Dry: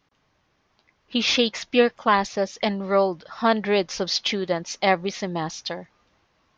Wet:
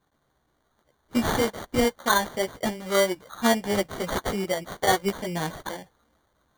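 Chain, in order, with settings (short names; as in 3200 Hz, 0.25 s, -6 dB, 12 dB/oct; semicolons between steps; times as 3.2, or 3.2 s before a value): chorus voices 4, 0.76 Hz, delay 15 ms, depth 2.2 ms; sample-and-hold 17×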